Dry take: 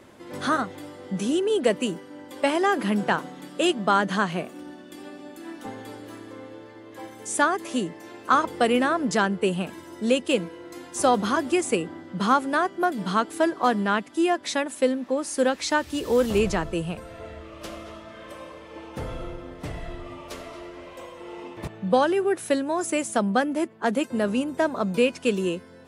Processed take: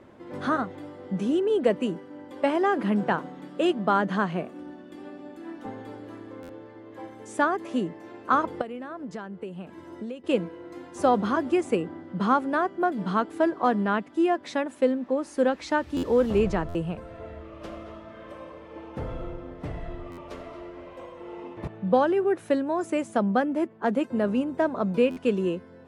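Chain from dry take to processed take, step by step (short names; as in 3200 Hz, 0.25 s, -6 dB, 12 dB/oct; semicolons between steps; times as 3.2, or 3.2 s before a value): LPF 1300 Hz 6 dB/oct; 8.61–10.24 compressor 12:1, threshold -33 dBFS, peak gain reduction 17 dB; stuck buffer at 6.42/15.96/16.68/20.11/25.1, samples 512, times 5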